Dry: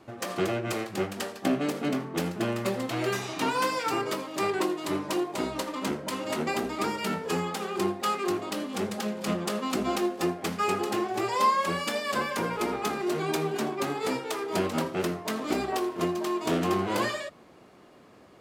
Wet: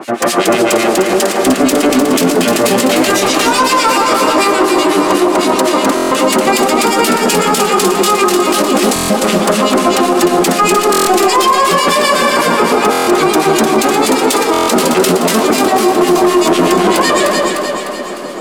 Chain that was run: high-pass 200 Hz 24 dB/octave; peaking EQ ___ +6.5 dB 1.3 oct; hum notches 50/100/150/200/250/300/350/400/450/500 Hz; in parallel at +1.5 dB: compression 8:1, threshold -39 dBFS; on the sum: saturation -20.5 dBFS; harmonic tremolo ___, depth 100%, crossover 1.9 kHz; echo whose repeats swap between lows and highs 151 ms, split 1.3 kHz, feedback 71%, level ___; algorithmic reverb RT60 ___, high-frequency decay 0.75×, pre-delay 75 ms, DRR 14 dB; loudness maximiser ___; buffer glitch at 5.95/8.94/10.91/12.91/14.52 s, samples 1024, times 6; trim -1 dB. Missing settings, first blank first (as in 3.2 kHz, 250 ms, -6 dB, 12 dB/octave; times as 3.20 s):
9.2 kHz, 8 Hz, -3 dB, 4.5 s, +25 dB